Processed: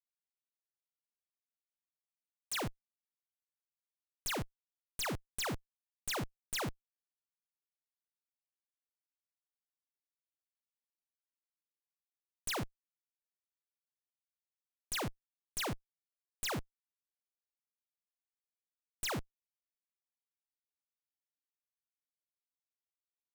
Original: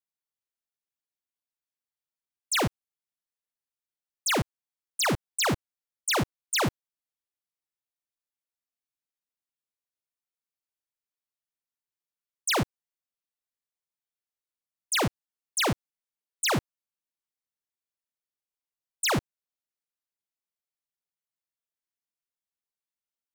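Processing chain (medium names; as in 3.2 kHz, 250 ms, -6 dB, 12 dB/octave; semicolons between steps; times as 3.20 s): tilt shelf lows -8 dB, about 1.4 kHz; Schmitt trigger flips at -39 dBFS; trim -3 dB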